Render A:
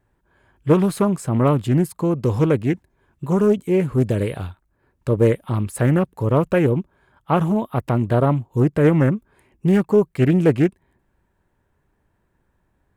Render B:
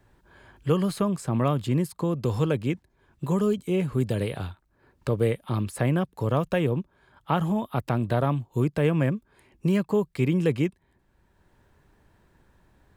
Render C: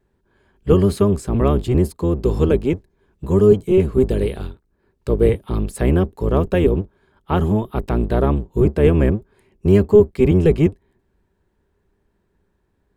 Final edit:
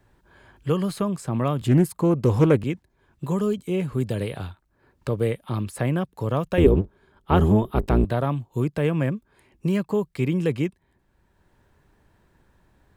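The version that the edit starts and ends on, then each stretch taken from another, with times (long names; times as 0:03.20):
B
0:01.62–0:02.64: punch in from A
0:06.58–0:08.05: punch in from C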